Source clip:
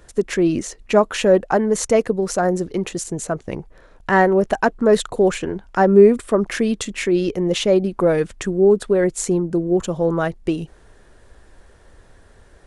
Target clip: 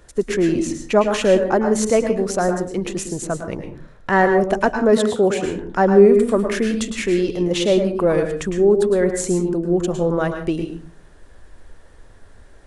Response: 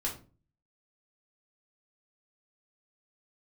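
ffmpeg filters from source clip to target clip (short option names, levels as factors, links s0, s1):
-filter_complex "[0:a]asettb=1/sr,asplit=3[s0][s1][s2];[s0]atrim=end=4.784[s3];[s1]atrim=start=4.78:end=5.45,asetpts=PTS-STARTPTS,afade=t=in:d=0.004:c=qsin,afade=t=out:st=0.666:d=0.004:c=qsin,highpass=f=53:w=0.5412,highpass=f=53:w=1.3066[s4];[s2]atrim=start=5.446[s5];[s3][s4]acrossfade=d=0.004:c1=hsin:c2=qsin[s6];[s6][s5]acrossfade=d=0.004:c1=qsin:c2=hsin,asplit=2[s7][s8];[1:a]atrim=start_sample=2205,adelay=106[s9];[s8][s9]afir=irnorm=-1:irlink=0,volume=0.355[s10];[s7][s10]amix=inputs=2:normalize=0,volume=0.891"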